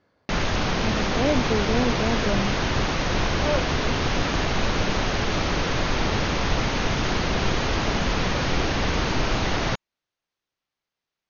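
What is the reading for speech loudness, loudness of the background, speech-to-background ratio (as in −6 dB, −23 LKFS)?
−28.0 LKFS, −24.5 LKFS, −3.5 dB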